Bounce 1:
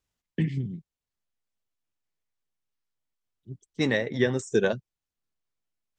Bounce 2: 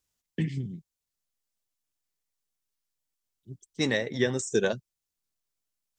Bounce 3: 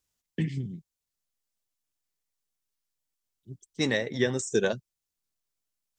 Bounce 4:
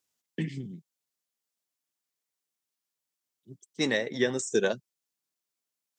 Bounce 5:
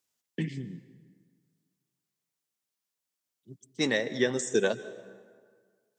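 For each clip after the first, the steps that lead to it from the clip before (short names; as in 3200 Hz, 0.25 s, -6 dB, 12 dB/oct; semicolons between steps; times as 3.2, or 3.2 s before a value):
tone controls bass -1 dB, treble +9 dB; gain -2 dB
nothing audible
HPF 180 Hz 12 dB/oct
plate-style reverb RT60 1.8 s, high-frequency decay 0.6×, pre-delay 0.12 s, DRR 16 dB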